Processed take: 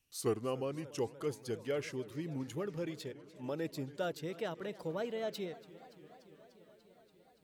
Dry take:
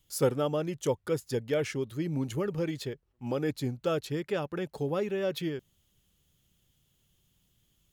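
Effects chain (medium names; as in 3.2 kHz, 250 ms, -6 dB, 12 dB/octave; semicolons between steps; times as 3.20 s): gliding tape speed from 85% -> 128%; bass shelf 97 Hz -8.5 dB; modulated delay 290 ms, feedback 78%, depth 190 cents, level -19 dB; trim -7 dB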